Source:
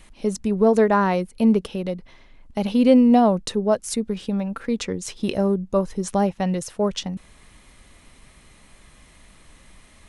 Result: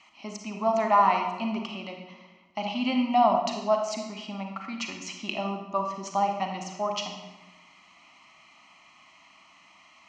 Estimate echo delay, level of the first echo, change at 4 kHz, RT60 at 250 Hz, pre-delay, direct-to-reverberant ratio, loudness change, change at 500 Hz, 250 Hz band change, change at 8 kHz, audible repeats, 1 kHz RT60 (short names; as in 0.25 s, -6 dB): none, none, -1.0 dB, 1.4 s, 34 ms, 3.0 dB, -6.5 dB, -8.0 dB, -12.5 dB, -7.5 dB, none, 1.0 s